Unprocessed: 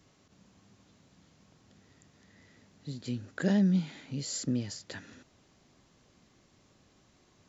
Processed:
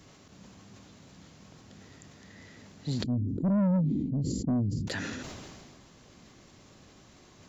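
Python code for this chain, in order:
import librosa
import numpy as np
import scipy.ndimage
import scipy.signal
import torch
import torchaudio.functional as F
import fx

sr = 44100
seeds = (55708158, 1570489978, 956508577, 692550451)

y = fx.cheby2_lowpass(x, sr, hz=610.0, order=4, stop_db=40, at=(3.02, 4.87), fade=0.02)
y = 10.0 ** (-31.5 / 20.0) * np.tanh(y / 10.0 ** (-31.5 / 20.0))
y = fx.sustainer(y, sr, db_per_s=26.0)
y = F.gain(torch.from_numpy(y), 8.5).numpy()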